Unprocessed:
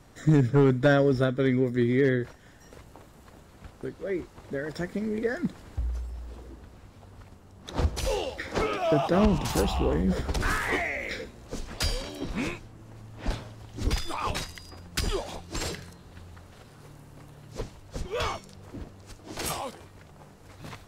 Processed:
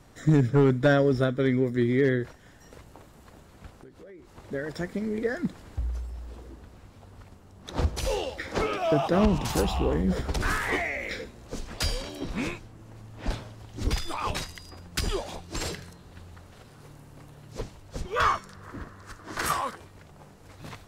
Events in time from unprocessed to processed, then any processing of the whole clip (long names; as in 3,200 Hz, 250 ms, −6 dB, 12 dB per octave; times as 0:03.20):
0:03.76–0:04.34: downward compressor 12 to 1, threshold −44 dBFS
0:18.16–0:19.76: flat-topped bell 1,400 Hz +11.5 dB 1.1 octaves